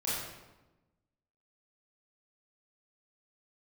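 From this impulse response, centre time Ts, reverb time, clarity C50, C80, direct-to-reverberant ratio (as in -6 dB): 85 ms, 1.1 s, -1.5 dB, 1.5 dB, -9.5 dB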